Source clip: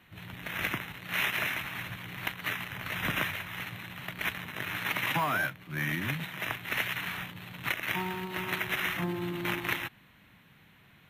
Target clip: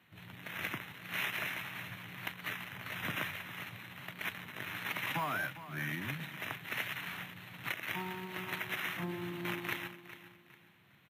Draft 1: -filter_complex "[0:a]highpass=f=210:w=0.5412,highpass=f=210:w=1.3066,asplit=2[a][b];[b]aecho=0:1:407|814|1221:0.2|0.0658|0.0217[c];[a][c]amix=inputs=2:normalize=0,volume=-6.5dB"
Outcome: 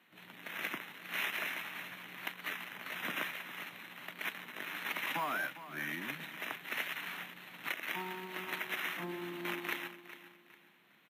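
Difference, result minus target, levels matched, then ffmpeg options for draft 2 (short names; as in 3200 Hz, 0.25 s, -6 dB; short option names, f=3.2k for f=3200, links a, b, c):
125 Hz band -9.5 dB
-filter_complex "[0:a]highpass=f=88:w=0.5412,highpass=f=88:w=1.3066,asplit=2[a][b];[b]aecho=0:1:407|814|1221:0.2|0.0658|0.0217[c];[a][c]amix=inputs=2:normalize=0,volume=-6.5dB"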